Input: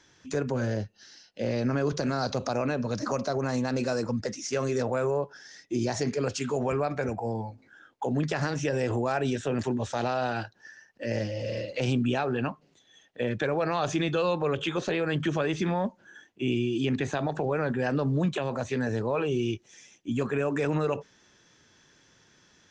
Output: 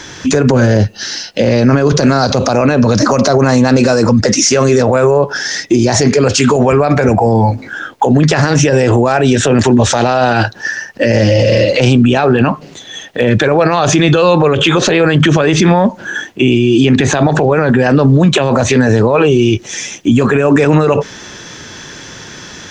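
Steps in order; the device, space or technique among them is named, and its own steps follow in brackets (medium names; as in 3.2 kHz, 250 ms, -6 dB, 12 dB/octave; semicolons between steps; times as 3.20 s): loud club master (compression 3:1, threshold -30 dBFS, peak gain reduction 6.5 dB; hard clipper -21.5 dBFS, distortion -42 dB; loudness maximiser +31 dB); trim -1 dB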